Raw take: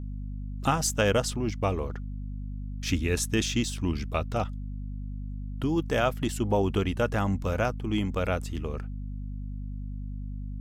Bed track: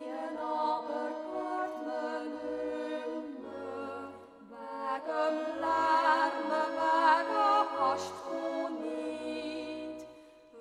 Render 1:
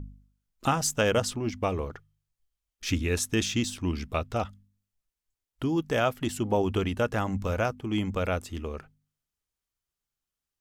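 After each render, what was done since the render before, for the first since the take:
hum removal 50 Hz, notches 5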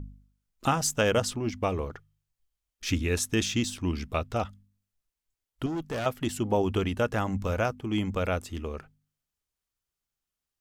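0:05.66–0:06.06: tube saturation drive 28 dB, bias 0.35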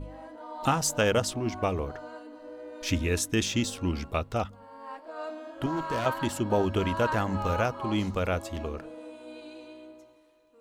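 mix in bed track −7 dB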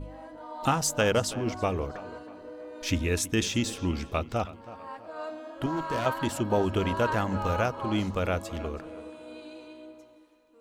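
tape delay 325 ms, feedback 48%, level −15.5 dB, low-pass 3,500 Hz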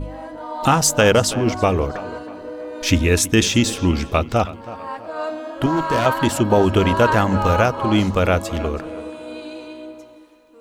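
level +11 dB
brickwall limiter −3 dBFS, peak gain reduction 3 dB

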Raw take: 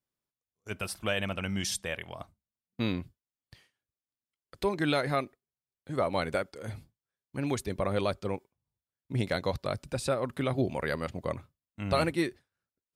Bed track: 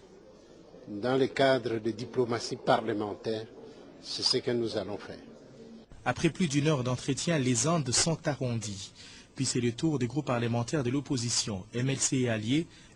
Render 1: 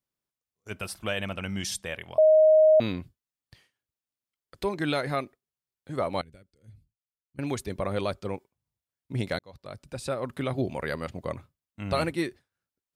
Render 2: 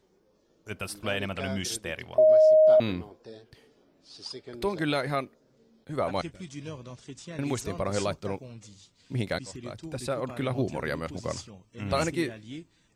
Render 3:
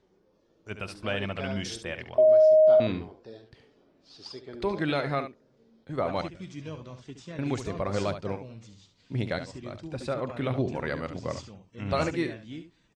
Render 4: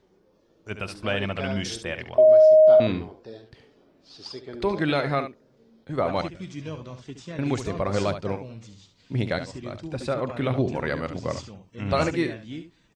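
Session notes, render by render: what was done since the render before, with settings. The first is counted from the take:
0:02.18–0:02.80: beep over 625 Hz −14 dBFS; 0:06.21–0:07.39: guitar amp tone stack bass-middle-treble 10-0-1; 0:09.39–0:10.28: fade in
mix in bed track −13 dB
high-frequency loss of the air 99 metres; on a send: single-tap delay 70 ms −10 dB
level +4 dB

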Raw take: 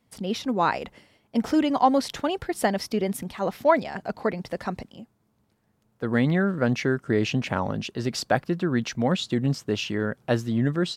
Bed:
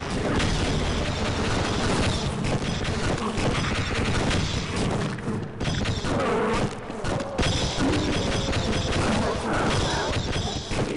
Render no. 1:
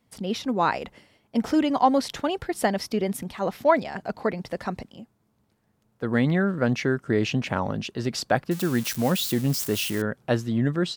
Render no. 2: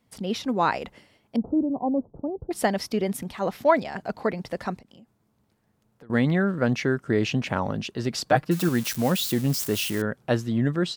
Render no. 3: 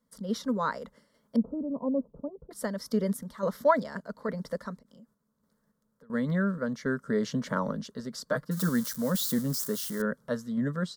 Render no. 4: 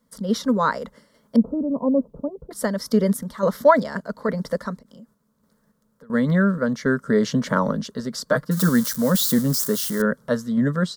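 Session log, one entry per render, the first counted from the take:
0:08.51–0:10.02: spike at every zero crossing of −23 dBFS
0:01.36–0:02.51: Gaussian smoothing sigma 14 samples; 0:04.75–0:06.10: downward compressor, threshold −47 dBFS; 0:08.26–0:08.69: comb filter 6.5 ms, depth 73%
sample-and-hold tremolo; phaser with its sweep stopped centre 510 Hz, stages 8
level +9 dB; brickwall limiter −3 dBFS, peak gain reduction 2 dB

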